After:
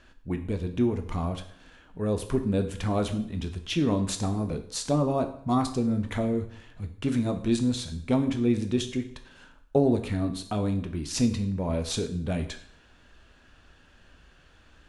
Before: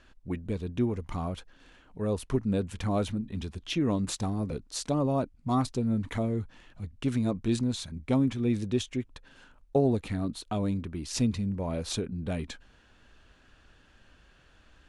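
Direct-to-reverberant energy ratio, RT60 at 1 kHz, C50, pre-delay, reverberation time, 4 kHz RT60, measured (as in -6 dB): 6.5 dB, 0.60 s, 11.5 dB, 6 ms, 0.60 s, 0.60 s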